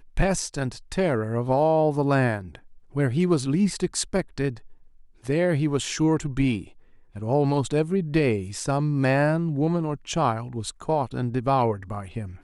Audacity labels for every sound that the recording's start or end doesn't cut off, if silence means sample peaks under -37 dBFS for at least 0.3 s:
2.950000	4.660000	sound
5.250000	6.680000	sound